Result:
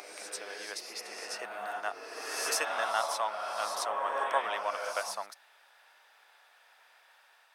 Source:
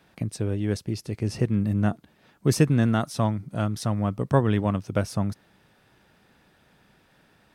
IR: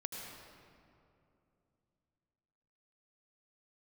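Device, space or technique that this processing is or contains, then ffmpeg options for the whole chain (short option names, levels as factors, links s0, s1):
ghost voice: -filter_complex "[0:a]areverse[s0];[1:a]atrim=start_sample=2205[s1];[s0][s1]afir=irnorm=-1:irlink=0,areverse,highpass=f=730:w=0.5412,highpass=f=730:w=1.3066,volume=1.41"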